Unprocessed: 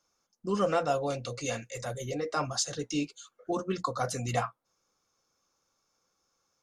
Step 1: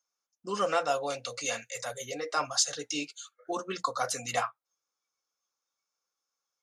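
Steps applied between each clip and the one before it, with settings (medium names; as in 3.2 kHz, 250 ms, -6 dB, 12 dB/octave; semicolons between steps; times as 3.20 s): high-pass 960 Hz 6 dB/octave; spectral noise reduction 14 dB; trim +4.5 dB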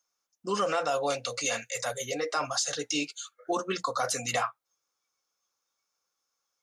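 peak limiter -22.5 dBFS, peak gain reduction 10.5 dB; trim +4.5 dB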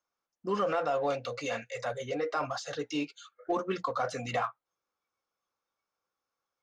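tape spacing loss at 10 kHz 28 dB; in parallel at -9.5 dB: saturation -37 dBFS, distortion -6 dB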